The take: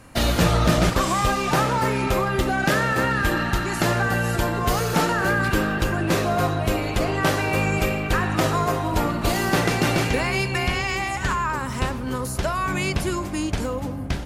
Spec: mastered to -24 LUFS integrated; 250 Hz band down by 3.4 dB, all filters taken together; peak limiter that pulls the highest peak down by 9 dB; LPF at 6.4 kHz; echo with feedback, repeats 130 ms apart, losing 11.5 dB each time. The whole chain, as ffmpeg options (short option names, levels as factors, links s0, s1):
-af "lowpass=6400,equalizer=f=250:t=o:g=-5,alimiter=limit=0.158:level=0:latency=1,aecho=1:1:130|260|390:0.266|0.0718|0.0194,volume=1.12"